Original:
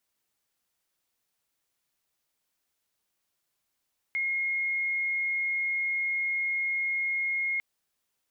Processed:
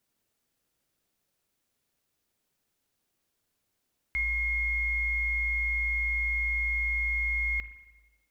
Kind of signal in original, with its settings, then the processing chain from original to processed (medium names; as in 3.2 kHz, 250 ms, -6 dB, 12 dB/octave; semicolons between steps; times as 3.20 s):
tone sine 2.15 kHz -26 dBFS 3.45 s
in parallel at -9 dB: sample-and-hold 40×; on the sum: spring tank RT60 1.1 s, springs 38/55 ms, chirp 20 ms, DRR 11.5 dB